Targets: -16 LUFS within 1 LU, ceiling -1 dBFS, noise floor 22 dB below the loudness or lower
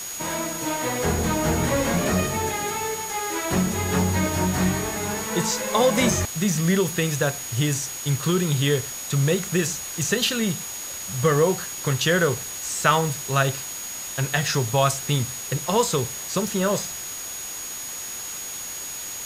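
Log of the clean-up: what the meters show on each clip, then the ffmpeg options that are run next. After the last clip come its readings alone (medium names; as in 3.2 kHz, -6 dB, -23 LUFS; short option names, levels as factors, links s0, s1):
steady tone 6.7 kHz; tone level -33 dBFS; noise floor -34 dBFS; noise floor target -46 dBFS; loudness -23.5 LUFS; peak level -4.0 dBFS; loudness target -16.0 LUFS
-> -af "bandreject=f=6700:w=30"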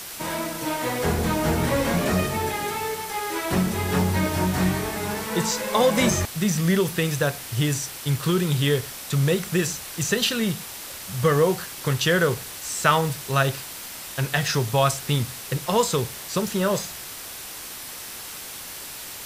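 steady tone not found; noise floor -37 dBFS; noise floor target -47 dBFS
-> -af "afftdn=nr=10:nf=-37"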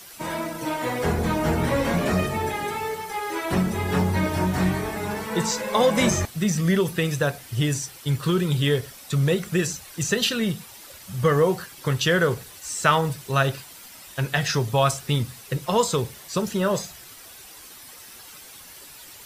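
noise floor -45 dBFS; noise floor target -46 dBFS
-> -af "afftdn=nr=6:nf=-45"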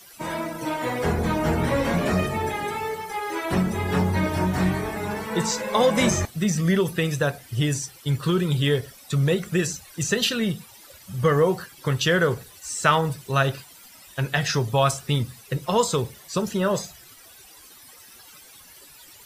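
noise floor -48 dBFS; loudness -24.0 LUFS; peak level -4.5 dBFS; loudness target -16.0 LUFS
-> -af "volume=2.51,alimiter=limit=0.891:level=0:latency=1"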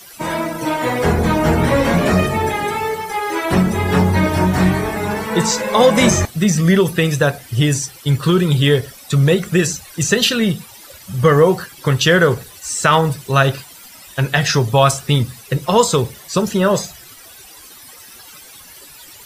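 loudness -16.0 LUFS; peak level -1.0 dBFS; noise floor -40 dBFS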